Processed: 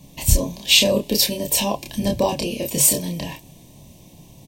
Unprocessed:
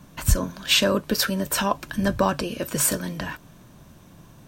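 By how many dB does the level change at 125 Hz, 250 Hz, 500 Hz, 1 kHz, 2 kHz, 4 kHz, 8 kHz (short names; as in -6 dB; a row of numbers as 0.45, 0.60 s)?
+2.5, +1.5, +3.0, -2.0, +0.5, +5.5, +7.0 dB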